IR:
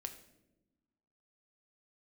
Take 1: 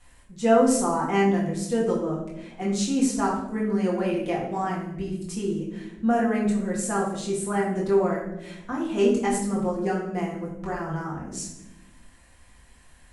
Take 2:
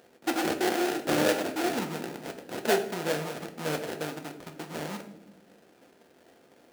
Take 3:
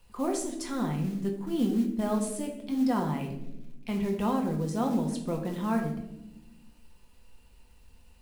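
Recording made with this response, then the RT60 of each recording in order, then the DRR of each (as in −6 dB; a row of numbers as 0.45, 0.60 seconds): 2; 0.95 s, non-exponential decay, 0.95 s; −5.0, 5.5, 1.0 decibels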